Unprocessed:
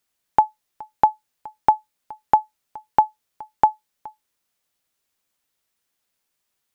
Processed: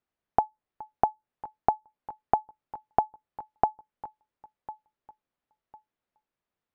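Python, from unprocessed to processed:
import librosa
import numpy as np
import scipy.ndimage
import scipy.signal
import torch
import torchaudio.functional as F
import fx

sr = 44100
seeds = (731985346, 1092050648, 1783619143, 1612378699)

y = fx.air_absorb(x, sr, metres=170.0)
y = fx.echo_feedback(y, sr, ms=1052, feedback_pct=26, wet_db=-20)
y = fx.env_lowpass_down(y, sr, base_hz=620.0, full_db=-17.5)
y = fx.high_shelf(y, sr, hz=2000.0, db=-12.0)
y = F.gain(torch.from_numpy(y), -2.0).numpy()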